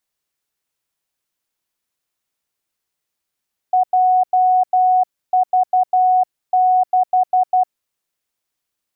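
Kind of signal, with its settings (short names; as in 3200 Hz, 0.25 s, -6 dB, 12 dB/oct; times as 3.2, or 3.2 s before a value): Morse "JV6" 12 wpm 738 Hz -10.5 dBFS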